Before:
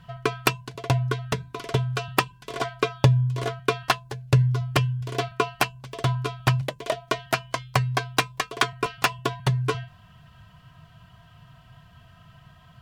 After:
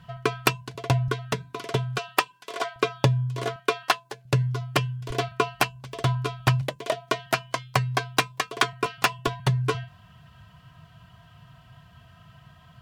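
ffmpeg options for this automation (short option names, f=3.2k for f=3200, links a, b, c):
-af "asetnsamples=n=441:p=0,asendcmd='1.08 highpass f 130;1.98 highpass f 420;2.76 highpass f 140;3.56 highpass f 320;4.25 highpass f 150;5.1 highpass f 42;6.75 highpass f 110;9.27 highpass f 44',highpass=47"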